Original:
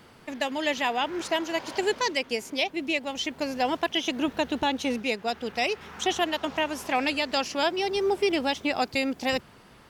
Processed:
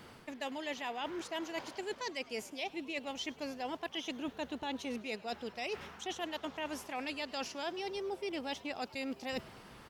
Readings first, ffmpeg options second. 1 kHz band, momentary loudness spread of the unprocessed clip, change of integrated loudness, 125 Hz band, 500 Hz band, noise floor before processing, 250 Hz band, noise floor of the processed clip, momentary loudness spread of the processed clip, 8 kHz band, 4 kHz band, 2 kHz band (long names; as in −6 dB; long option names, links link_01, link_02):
−13.0 dB, 4 LU, −12.5 dB, −10.0 dB, −12.5 dB, −53 dBFS, −11.5 dB, −56 dBFS, 3 LU, −11.0 dB, −12.5 dB, −13.0 dB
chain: -filter_complex "[0:a]areverse,acompressor=threshold=-36dB:ratio=6,areverse,asplit=6[link_01][link_02][link_03][link_04][link_05][link_06];[link_02]adelay=103,afreqshift=130,volume=-21.5dB[link_07];[link_03]adelay=206,afreqshift=260,volume=-25.5dB[link_08];[link_04]adelay=309,afreqshift=390,volume=-29.5dB[link_09];[link_05]adelay=412,afreqshift=520,volume=-33.5dB[link_10];[link_06]adelay=515,afreqshift=650,volume=-37.6dB[link_11];[link_01][link_07][link_08][link_09][link_10][link_11]amix=inputs=6:normalize=0,volume=-1dB"